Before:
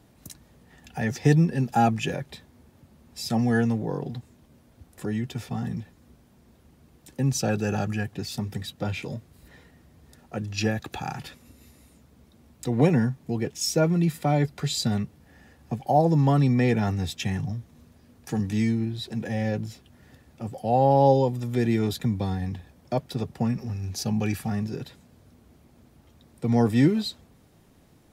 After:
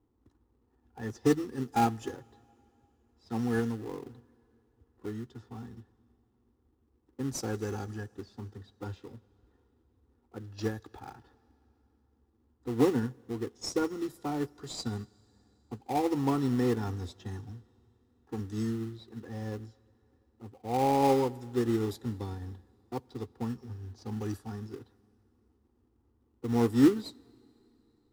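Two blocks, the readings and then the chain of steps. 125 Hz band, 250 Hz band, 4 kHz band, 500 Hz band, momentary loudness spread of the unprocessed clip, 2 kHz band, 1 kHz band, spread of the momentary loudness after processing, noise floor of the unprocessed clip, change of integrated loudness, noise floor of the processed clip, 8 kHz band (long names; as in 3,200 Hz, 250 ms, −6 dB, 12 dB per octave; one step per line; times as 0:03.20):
−12.0 dB, −6.0 dB, −10.5 dB, −6.0 dB, 16 LU, −10.0 dB, −6.5 dB, 19 LU, −58 dBFS, −6.5 dB, −71 dBFS, −9.5 dB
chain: low-pass that shuts in the quiet parts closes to 910 Hz, open at −21.5 dBFS
phaser with its sweep stopped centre 620 Hz, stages 6
in parallel at −10 dB: sample-rate reduction 1,600 Hz, jitter 20%
on the sum: dense smooth reverb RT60 3.5 s, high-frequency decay 0.95×, pre-delay 0 ms, DRR 18 dB
expander for the loud parts 1.5 to 1, over −42 dBFS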